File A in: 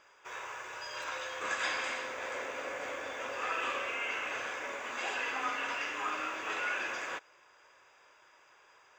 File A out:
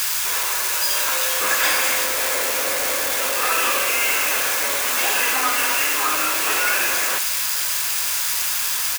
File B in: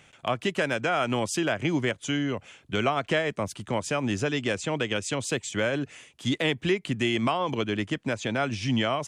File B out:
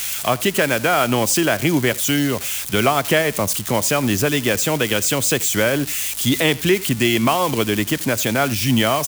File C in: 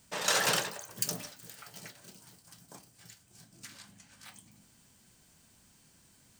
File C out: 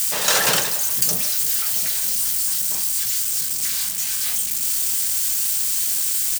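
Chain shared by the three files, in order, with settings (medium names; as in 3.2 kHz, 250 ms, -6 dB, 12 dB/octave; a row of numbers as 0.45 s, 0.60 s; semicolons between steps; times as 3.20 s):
zero-crossing glitches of -24 dBFS; delay 83 ms -21.5 dB; hum 60 Hz, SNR 32 dB; normalise loudness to -18 LUFS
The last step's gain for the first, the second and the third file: +12.0 dB, +8.5 dB, +8.0 dB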